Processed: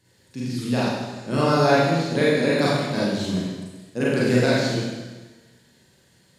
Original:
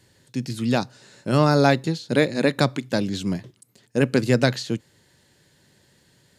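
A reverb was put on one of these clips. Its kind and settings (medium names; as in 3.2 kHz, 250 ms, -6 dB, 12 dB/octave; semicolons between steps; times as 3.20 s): Schroeder reverb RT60 1.3 s, combs from 33 ms, DRR -8 dB; trim -7.5 dB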